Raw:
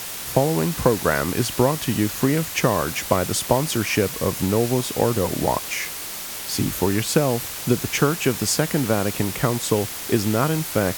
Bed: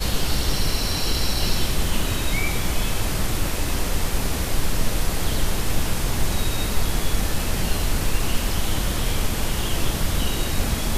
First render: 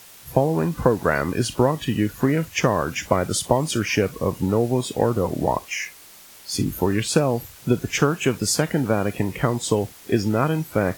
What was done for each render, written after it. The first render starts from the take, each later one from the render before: noise print and reduce 14 dB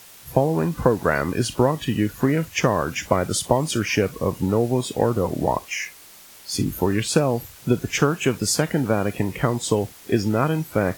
nothing audible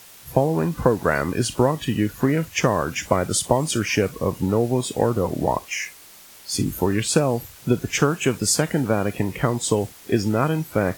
dynamic EQ 8200 Hz, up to +4 dB, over -44 dBFS, Q 1.9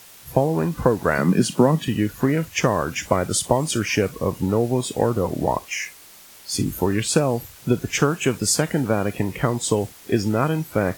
1.18–1.88 resonant high-pass 180 Hz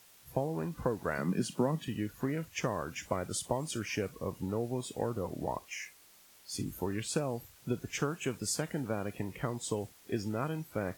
gain -14 dB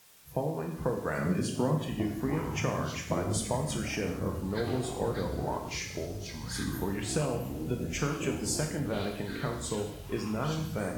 non-linear reverb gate 0.26 s falling, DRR 2 dB; echoes that change speed 0.714 s, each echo -7 st, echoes 3, each echo -6 dB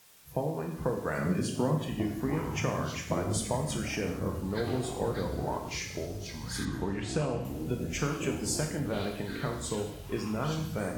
6.65–7.45 air absorption 69 m

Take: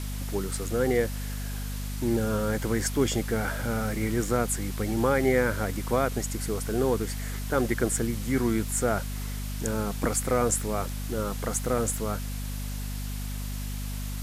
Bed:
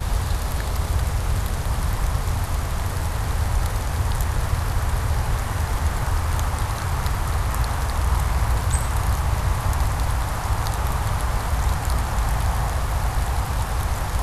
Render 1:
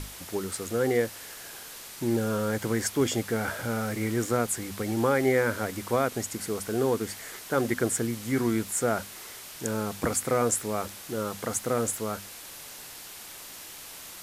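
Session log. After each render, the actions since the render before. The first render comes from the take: notches 50/100/150/200/250 Hz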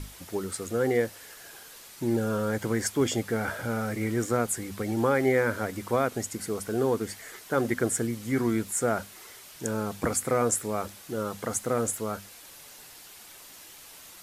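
denoiser 6 dB, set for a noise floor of -44 dBFS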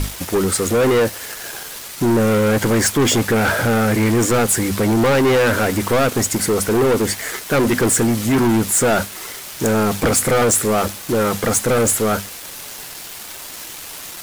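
sample leveller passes 5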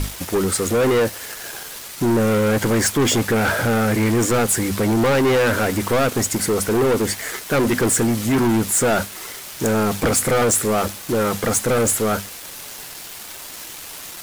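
gain -2 dB

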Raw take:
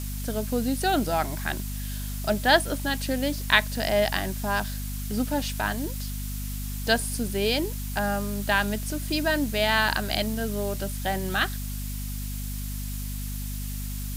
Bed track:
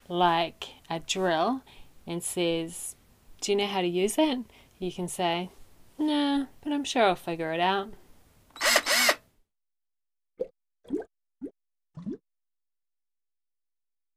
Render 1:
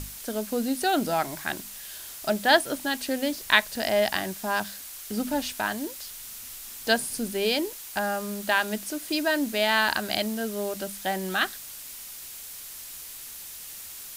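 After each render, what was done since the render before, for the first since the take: notches 50/100/150/200/250 Hz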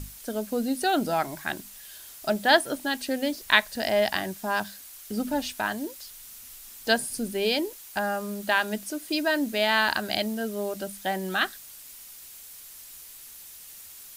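denoiser 6 dB, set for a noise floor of -41 dBFS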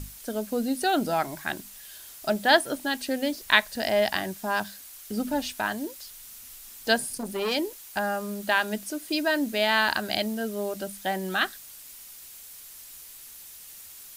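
7.04–7.55 core saturation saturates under 1400 Hz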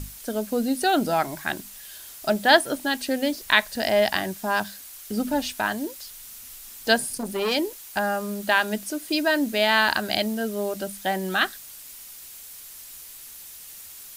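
gain +3 dB; limiter -2 dBFS, peak gain reduction 3 dB

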